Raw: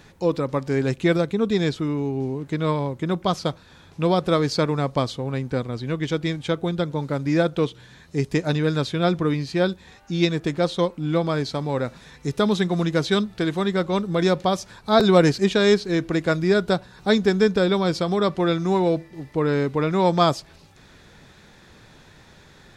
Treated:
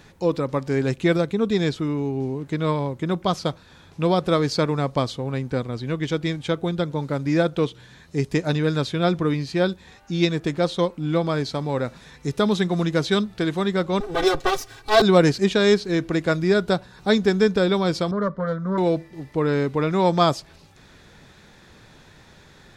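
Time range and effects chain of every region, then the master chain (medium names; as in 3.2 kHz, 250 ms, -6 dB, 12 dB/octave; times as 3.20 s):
14.00–15.02 s: comb filter that takes the minimum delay 7.4 ms + comb 2.6 ms, depth 94%
18.11–18.78 s: self-modulated delay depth 0.17 ms + low-pass 1.7 kHz + static phaser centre 520 Hz, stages 8
whole clip: none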